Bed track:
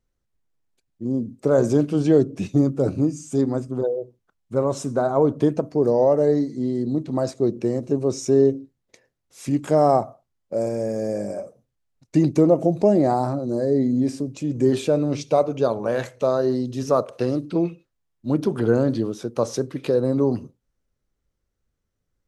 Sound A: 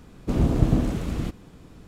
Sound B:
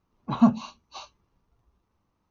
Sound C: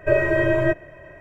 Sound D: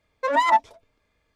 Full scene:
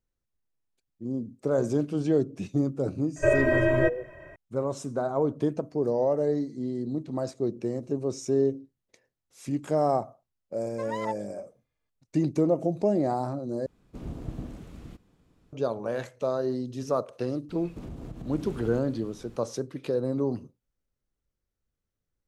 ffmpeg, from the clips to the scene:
-filter_complex "[1:a]asplit=2[a][b];[0:a]volume=-7.5dB[c];[b]acompressor=threshold=-33dB:ratio=6:attack=3.2:release=140:knee=1:detection=peak[d];[c]asplit=2[e][f];[e]atrim=end=13.664[g];[a]atrim=end=1.87,asetpts=PTS-STARTPTS,volume=-16.5dB[h];[f]atrim=start=15.526[i];[3:a]atrim=end=1.2,asetpts=PTS-STARTPTS,volume=-3.5dB,afade=t=in:d=0.004:c=hsin,afade=t=out:st=1.196:d=0.004:c=hsin,adelay=3160[j];[4:a]atrim=end=1.35,asetpts=PTS-STARTPTS,volume=-16dB,afade=t=in:d=0.004:c=hsin,afade=t=out:st=1.346:d=0.004:c=hsin,adelay=10550[k];[d]atrim=end=1.87,asetpts=PTS-STARTPTS,volume=-4dB,afade=t=in:d=0.004:c=hsin,afade=t=out:st=1.866:d=0.004:c=hsin,adelay=17490[l];[g][h]acrossfade=d=0.004:c1=hsin:c2=hsin[m];[m][i]acrossfade=d=0.004:c1=hsin:c2=hsin[n];[n][j][k][l]amix=inputs=4:normalize=0"

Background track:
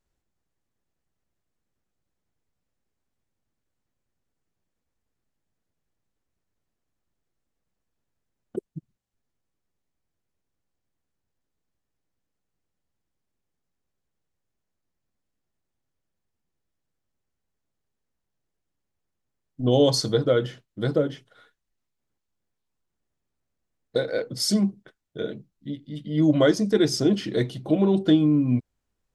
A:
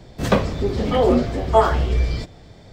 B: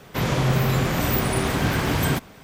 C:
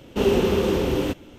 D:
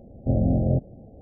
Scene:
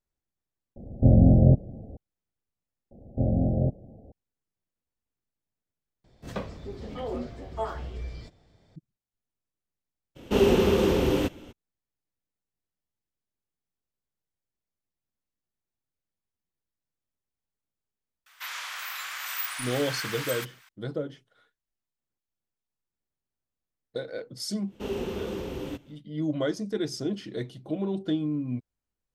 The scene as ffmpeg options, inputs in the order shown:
-filter_complex "[4:a]asplit=2[a][b];[3:a]asplit=2[c][d];[0:a]volume=-9.5dB[e];[a]lowshelf=f=340:g=6.5[f];[2:a]highpass=f=1.2k:w=0.5412,highpass=f=1.2k:w=1.3066[g];[e]asplit=3[h][i][j];[h]atrim=end=2.914[k];[b]atrim=end=1.21,asetpts=PTS-STARTPTS,volume=-3dB[l];[i]atrim=start=4.116:end=6.044[m];[1:a]atrim=end=2.72,asetpts=PTS-STARTPTS,volume=-17dB[n];[j]atrim=start=8.756[o];[f]atrim=end=1.21,asetpts=PTS-STARTPTS,volume=-0.5dB,afade=t=in:d=0.004:c=hsin,afade=t=out:st=1.206:d=0.004:c=hsin,adelay=760[p];[c]atrim=end=1.38,asetpts=PTS-STARTPTS,volume=-1dB,afade=t=in:d=0.02,afade=t=out:st=1.36:d=0.02,adelay=10150[q];[g]atrim=end=2.43,asetpts=PTS-STARTPTS,volume=-5.5dB,afade=t=in:d=0.004:c=hsin,afade=t=out:st=2.426:d=0.004:c=hsin,adelay=18260[r];[d]atrim=end=1.38,asetpts=PTS-STARTPTS,volume=-12.5dB,afade=t=in:d=0.1,afade=t=out:st=1.28:d=0.1,adelay=24640[s];[k][l]acrossfade=d=0.004:c1=hsin:c2=hsin[t];[t][m]acrossfade=d=0.004:c1=hsin:c2=hsin[u];[u][n]acrossfade=d=0.004:c1=hsin:c2=hsin[v];[v][o]acrossfade=d=0.004:c1=hsin:c2=hsin[w];[w][p][q][r][s]amix=inputs=5:normalize=0"

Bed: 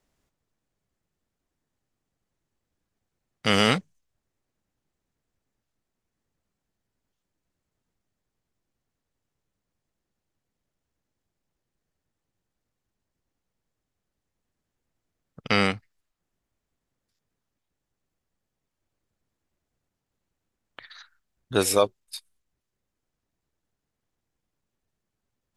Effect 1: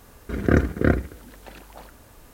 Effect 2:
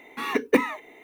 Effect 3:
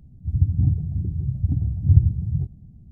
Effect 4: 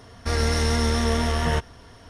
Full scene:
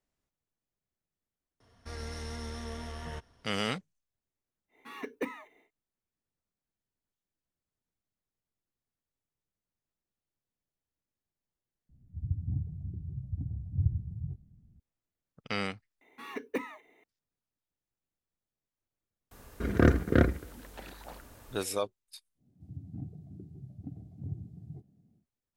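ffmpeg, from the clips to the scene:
-filter_complex "[2:a]asplit=2[a][b];[3:a]asplit=2[c][d];[0:a]volume=-11.5dB[e];[1:a]asoftclip=type=hard:threshold=-8.5dB[f];[d]highpass=290[g];[e]asplit=2[h][i];[h]atrim=end=16.014[j];[b]atrim=end=1.03,asetpts=PTS-STARTPTS,volume=-14.5dB[k];[i]atrim=start=17.036[l];[4:a]atrim=end=2.09,asetpts=PTS-STARTPTS,volume=-18dB,afade=t=in:d=0.004:c=hsin,afade=t=out:st=2.086:d=0.004:c=hsin,adelay=1600[m];[a]atrim=end=1.03,asetpts=PTS-STARTPTS,volume=-15.5dB,afade=t=in:d=0.1,afade=t=out:st=0.93:d=0.1,adelay=4680[n];[c]atrim=end=2.91,asetpts=PTS-STARTPTS,volume=-14dB,afade=t=in:d=0.004:c=hsin,afade=t=out:st=2.906:d=0.004:c=hsin,adelay=11890[o];[f]atrim=end=2.33,asetpts=PTS-STARTPTS,volume=-3.5dB,afade=t=in:d=0.004:c=hsin,afade=t=out:st=2.326:d=0.004:c=hsin,adelay=19310[p];[g]atrim=end=2.91,asetpts=PTS-STARTPTS,volume=-6.5dB,afade=t=in:d=0.1,afade=t=out:st=2.81:d=0.1,adelay=22350[q];[j][k]acrossfade=d=0.004:c1=hsin:c2=hsin[r];[r][l]acrossfade=d=0.004:c1=hsin:c2=hsin[s];[s][m][n][o][p][q]amix=inputs=6:normalize=0"

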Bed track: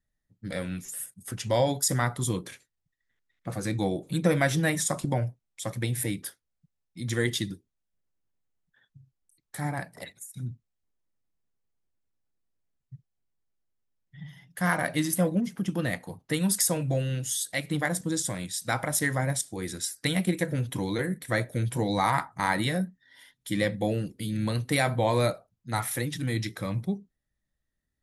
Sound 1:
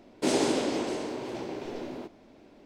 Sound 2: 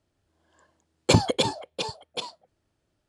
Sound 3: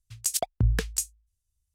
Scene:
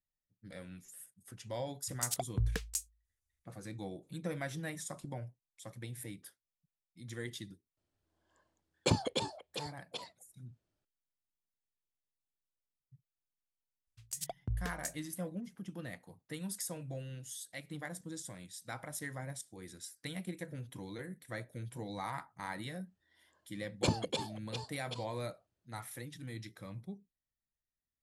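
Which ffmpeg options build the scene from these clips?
-filter_complex "[3:a]asplit=2[a][b];[2:a]asplit=2[c][d];[0:a]volume=-15.5dB[e];[a]highpass=41,atrim=end=1.74,asetpts=PTS-STARTPTS,volume=-8.5dB,afade=t=in:d=0.004:c=hsin,afade=t=out:st=1.736:d=0.004:c=hsin,adelay=1770[f];[c]atrim=end=3.08,asetpts=PTS-STARTPTS,volume=-11dB,afade=t=in:d=0.004:c=hsin,afade=t=out:st=3.076:d=0.004:c=hsin,adelay=7770[g];[b]atrim=end=1.74,asetpts=PTS-STARTPTS,volume=-13.5dB,afade=t=in:d=0.004:c=hsin,afade=t=out:st=1.736:d=0.004:c=hsin,adelay=13870[h];[d]atrim=end=3.08,asetpts=PTS-STARTPTS,volume=-12.5dB,afade=t=in:d=0.004:c=hsin,afade=t=out:st=3.076:d=0.004:c=hsin,adelay=22740[i];[e][f][g][h][i]amix=inputs=5:normalize=0"

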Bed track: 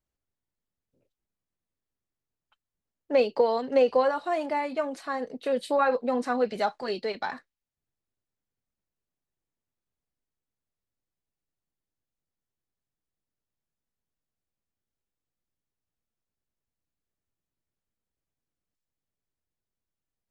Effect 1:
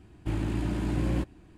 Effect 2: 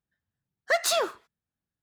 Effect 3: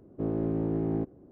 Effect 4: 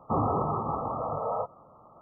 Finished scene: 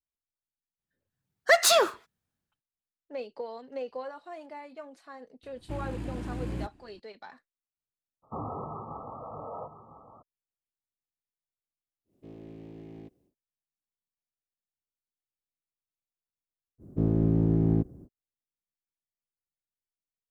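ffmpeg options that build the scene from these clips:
-filter_complex "[3:a]asplit=2[a][b];[0:a]volume=-15dB[c];[2:a]dynaudnorm=f=160:g=5:m=11.5dB[d];[4:a]aecho=1:1:1004:0.251[e];[a]aexciter=amount=6.3:drive=8.4:freq=2.1k[f];[b]bass=f=250:g=13,treble=f=4k:g=15[g];[d]atrim=end=1.82,asetpts=PTS-STARTPTS,volume=-6.5dB,afade=t=in:d=0.004:c=hsin,afade=t=out:st=1.816:d=0.004:c=hsin,adelay=790[h];[1:a]atrim=end=1.57,asetpts=PTS-STARTPTS,volume=-7dB,afade=t=in:d=0.004:c=hsin,afade=t=out:st=1.566:d=0.004:c=hsin,adelay=5430[i];[e]atrim=end=2.01,asetpts=PTS-STARTPTS,volume=-10dB,afade=t=in:d=0.02,afade=t=out:st=1.99:d=0.02,adelay=8220[j];[f]atrim=end=1.31,asetpts=PTS-STARTPTS,volume=-17dB,afade=t=in:d=0.1,afade=t=out:st=1.21:d=0.1,adelay=12040[k];[g]atrim=end=1.31,asetpts=PTS-STARTPTS,volume=-2.5dB,afade=t=in:d=0.05,afade=t=out:st=1.26:d=0.05,adelay=16780[l];[c][h][i][j][k][l]amix=inputs=6:normalize=0"

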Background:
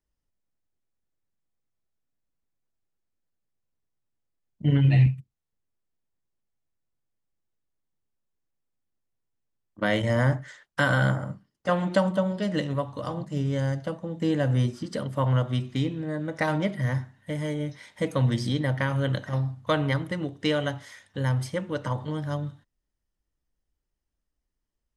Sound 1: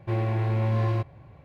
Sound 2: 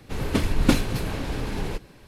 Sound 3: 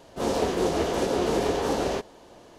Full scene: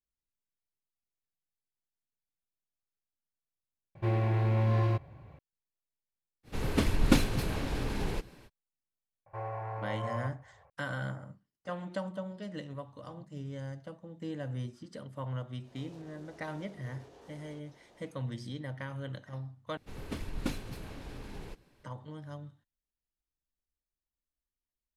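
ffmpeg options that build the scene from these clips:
-filter_complex "[1:a]asplit=2[a][b];[2:a]asplit=2[c][d];[0:a]volume=-14dB[e];[b]firequalizer=gain_entry='entry(100,0);entry(200,-14);entry(310,-16);entry(440,7);entry(850,14);entry(1700,6);entry(3600,-12);entry(5500,-4)':delay=0.05:min_phase=1[f];[3:a]acompressor=threshold=-41dB:ratio=6:attack=3.2:release=140:knee=1:detection=peak[g];[e]asplit=3[h][i][j];[h]atrim=end=3.954[k];[a]atrim=end=1.44,asetpts=PTS-STARTPTS,volume=-2.5dB[l];[i]atrim=start=5.386:end=19.774[m];[d]atrim=end=2.07,asetpts=PTS-STARTPTS,volume=-15.5dB[n];[j]atrim=start=21.836[o];[c]atrim=end=2.07,asetpts=PTS-STARTPTS,volume=-4.5dB,afade=t=in:d=0.05,afade=t=out:st=2.02:d=0.05,adelay=6430[p];[f]atrim=end=1.44,asetpts=PTS-STARTPTS,volume=-15dB,afade=t=in:d=0.004:c=hsin,afade=t=out:st=1.436:d=0.004:c=hsin,adelay=9260[q];[g]atrim=end=2.58,asetpts=PTS-STARTPTS,volume=-12.5dB,afade=t=in:d=0.1,afade=t=out:st=2.48:d=0.1,adelay=15590[r];[k][l]acrossfade=d=0.004:c1=hsin:c2=hsin[s];[s][m]acrossfade=d=0.004:c1=hsin:c2=hsin[t];[t][n]acrossfade=d=0.004:c1=hsin:c2=hsin[u];[u][o]acrossfade=d=0.004:c1=hsin:c2=hsin[v];[v][p][q][r]amix=inputs=4:normalize=0"

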